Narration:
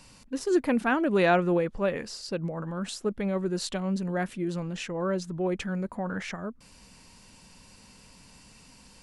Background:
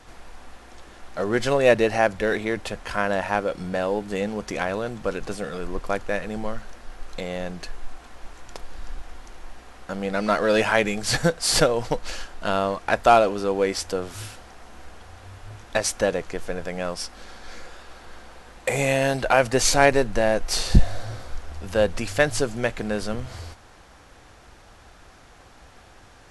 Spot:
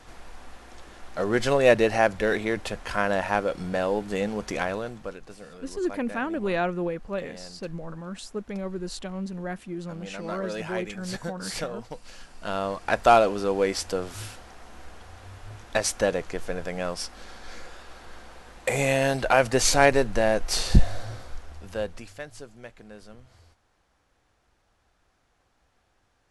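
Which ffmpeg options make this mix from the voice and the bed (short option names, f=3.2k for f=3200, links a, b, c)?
-filter_complex "[0:a]adelay=5300,volume=-4dB[a];[1:a]volume=11.5dB,afade=t=out:st=4.57:d=0.64:silence=0.223872,afade=t=in:st=12.11:d=0.94:silence=0.237137,afade=t=out:st=20.85:d=1.35:silence=0.133352[b];[a][b]amix=inputs=2:normalize=0"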